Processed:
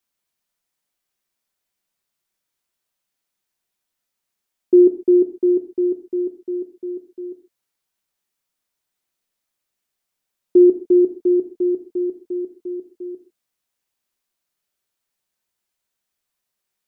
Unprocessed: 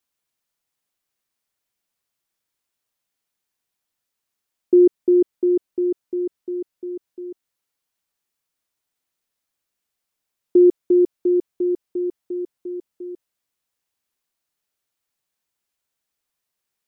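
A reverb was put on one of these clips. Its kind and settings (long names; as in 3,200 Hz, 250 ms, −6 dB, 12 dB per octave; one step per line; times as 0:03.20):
reverb whose tail is shaped and stops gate 170 ms falling, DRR 6.5 dB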